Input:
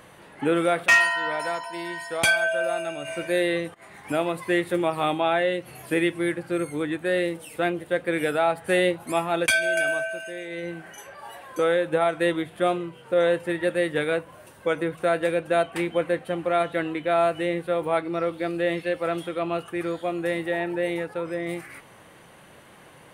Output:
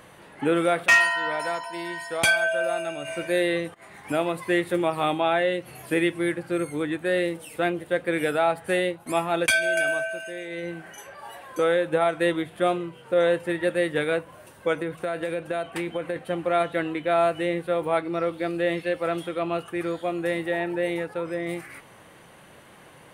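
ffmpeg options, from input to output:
-filter_complex "[0:a]asettb=1/sr,asplit=3[s0][s1][s2];[s0]atrim=end=14.764[s3];[s1]atrim=start=14.76:end=16.16,asetpts=PTS-STARTPTS,afade=t=in:d=0.004:c=qsin,afade=t=out:st=1.396:d=0.004:c=qsin,acompressor=threshold=0.0631:ratio=6:attack=3.2:release=140:knee=1:detection=peak[s4];[s2]atrim=start=16.156[s5];[s3][s4]acrossfade=d=0.004:c1=hsin:c2=qsin[s6];[s6][s5]acrossfade=d=0.004:c1=qsin:c2=hsin,asplit=2[s7][s8];[s7]atrim=end=9.06,asetpts=PTS-STARTPTS,afade=t=out:st=8.56:d=0.5:silence=0.375837[s9];[s8]atrim=start=9.06,asetpts=PTS-STARTPTS,afade=t=in:d=0.004:c=hsin:silence=0.375837[s10];[s9][s10]concat=n=2:v=0:a=1"

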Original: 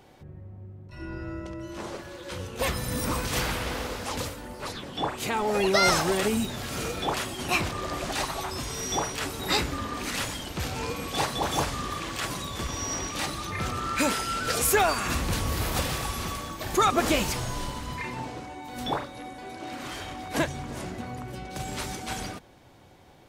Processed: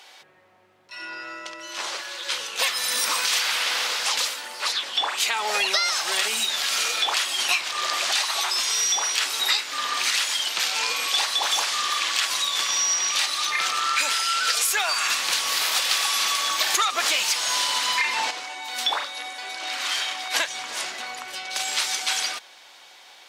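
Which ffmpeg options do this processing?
-filter_complex "[0:a]asettb=1/sr,asplit=3[s0][s1][s2];[s0]atrim=end=15.914[s3];[s1]atrim=start=15.91:end=18.31,asetpts=PTS-STARTPTS,afade=t=in:d=0.004:c=qsin,afade=t=out:st=2.396:d=0.004:c=qsin,aeval=exprs='0.299*sin(PI/2*1.58*val(0)/0.299)':c=same[s4];[s2]atrim=start=18.306[s5];[s3][s4]acrossfade=d=0.004:c1=hsin:c2=qsin[s6];[s6][s5]acrossfade=d=0.004:c1=qsin:c2=hsin,highpass=860,equalizer=f=4200:t=o:w=2.5:g=11.5,acompressor=threshold=0.0562:ratio=10,volume=1.88"

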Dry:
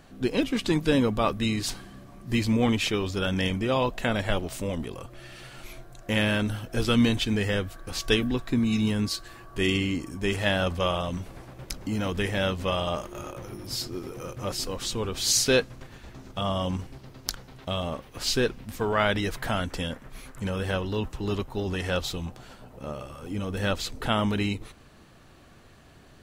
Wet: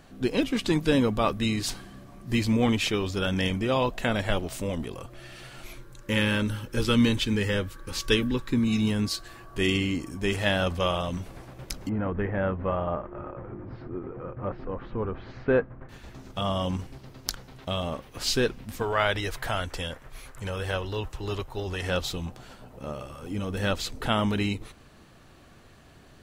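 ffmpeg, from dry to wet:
-filter_complex "[0:a]asettb=1/sr,asplit=3[s0][s1][s2];[s0]atrim=end=5.744[s3];[s1]atrim=start=5.74:end=8.68,asetpts=PTS-STARTPTS,afade=t=in:d=0.004:c=qsin,afade=t=out:st=2.936:d=0.004:c=qsin,asuperstop=centerf=700:order=20:qfactor=4.1[s4];[s2]atrim=start=8.676[s5];[s3][s4]acrossfade=d=0.004:c1=hsin:c2=qsin[s6];[s6][s5]acrossfade=d=0.004:c1=qsin:c2=hsin,asettb=1/sr,asplit=3[s7][s8][s9];[s7]atrim=end=11.894[s10];[s8]atrim=start=11.89:end=15.89,asetpts=PTS-STARTPTS,afade=t=in:d=0.004:c=qsin,afade=t=out:st=3.996:d=0.004:c=qsin,lowpass=f=1700:w=0.5412,lowpass=f=1700:w=1.3066[s11];[s9]atrim=start=15.886[s12];[s10][s11]acrossfade=d=0.004:c1=hsin:c2=qsin[s13];[s13][s12]acrossfade=d=0.004:c1=qsin:c2=hsin,asettb=1/sr,asplit=3[s14][s15][s16];[s14]atrim=end=18.824[s17];[s15]atrim=start=18.82:end=21.83,asetpts=PTS-STARTPTS,afade=t=in:d=0.004:c=qsin,afade=t=out:st=3.006:d=0.004:c=qsin,equalizer=f=220:w=1.6:g=-11[s18];[s16]atrim=start=21.826[s19];[s17][s18]acrossfade=d=0.004:c1=hsin:c2=qsin[s20];[s20][s19]acrossfade=d=0.004:c1=qsin:c2=hsin"

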